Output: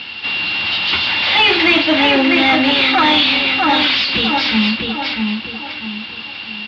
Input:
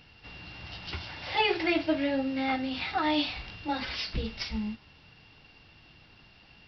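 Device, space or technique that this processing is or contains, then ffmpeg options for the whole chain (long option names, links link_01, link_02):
overdrive pedal into a guitar cabinet: -filter_complex "[0:a]highshelf=frequency=2700:width_type=q:width=1.5:gain=8,asplit=2[link_01][link_02];[link_02]adelay=646,lowpass=frequency=2400:poles=1,volume=-6dB,asplit=2[link_03][link_04];[link_04]adelay=646,lowpass=frequency=2400:poles=1,volume=0.37,asplit=2[link_05][link_06];[link_06]adelay=646,lowpass=frequency=2400:poles=1,volume=0.37,asplit=2[link_07][link_08];[link_08]adelay=646,lowpass=frequency=2400:poles=1,volume=0.37[link_09];[link_01][link_03][link_05][link_07][link_09]amix=inputs=5:normalize=0,asplit=2[link_10][link_11];[link_11]highpass=frequency=720:poles=1,volume=26dB,asoftclip=type=tanh:threshold=-10dB[link_12];[link_10][link_12]amix=inputs=2:normalize=0,lowpass=frequency=2800:poles=1,volume=-6dB,highpass=96,equalizer=frequency=96:width_type=q:width=4:gain=3,equalizer=frequency=140:width_type=q:width=4:gain=-8,equalizer=frequency=220:width_type=q:width=4:gain=4,equalizer=frequency=460:width_type=q:width=4:gain=-6,equalizer=frequency=680:width_type=q:width=4:gain=-6,equalizer=frequency=2300:width_type=q:width=4:gain=3,lowpass=frequency=3900:width=0.5412,lowpass=frequency=3900:width=1.3066,volume=7.5dB"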